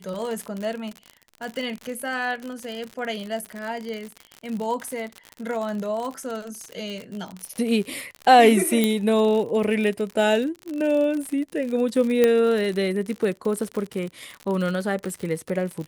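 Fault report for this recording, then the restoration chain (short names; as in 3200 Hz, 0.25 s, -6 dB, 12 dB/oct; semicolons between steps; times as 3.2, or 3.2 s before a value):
crackle 59/s -28 dBFS
8.84 pop -7 dBFS
12.24 pop -6 dBFS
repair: de-click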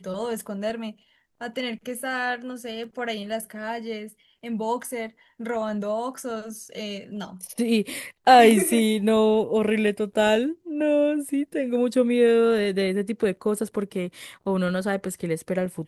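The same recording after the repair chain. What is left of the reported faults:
none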